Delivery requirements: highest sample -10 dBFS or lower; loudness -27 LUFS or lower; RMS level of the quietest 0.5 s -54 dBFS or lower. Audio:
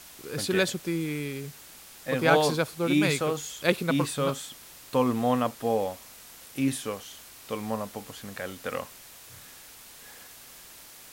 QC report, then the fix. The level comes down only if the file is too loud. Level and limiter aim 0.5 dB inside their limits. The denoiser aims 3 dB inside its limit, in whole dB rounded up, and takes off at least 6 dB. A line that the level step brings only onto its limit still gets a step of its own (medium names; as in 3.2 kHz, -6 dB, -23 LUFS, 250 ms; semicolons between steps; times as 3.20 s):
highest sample -5.5 dBFS: fail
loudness -28.0 LUFS: pass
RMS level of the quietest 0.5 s -49 dBFS: fail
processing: noise reduction 8 dB, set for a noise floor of -49 dBFS; peak limiter -10.5 dBFS